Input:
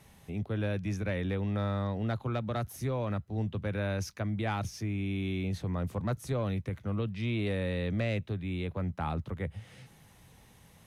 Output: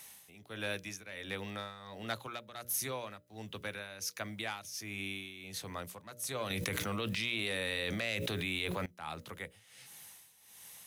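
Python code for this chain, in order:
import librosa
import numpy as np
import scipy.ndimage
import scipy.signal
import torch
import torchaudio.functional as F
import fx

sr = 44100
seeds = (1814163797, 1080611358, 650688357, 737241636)

y = fx.tilt_eq(x, sr, slope=4.5)
y = fx.hum_notches(y, sr, base_hz=60, count=10)
y = y * (1.0 - 0.76 / 2.0 + 0.76 / 2.0 * np.cos(2.0 * np.pi * 1.4 * (np.arange(len(y)) / sr)))
y = fx.env_flatten(y, sr, amount_pct=100, at=(6.5, 8.86))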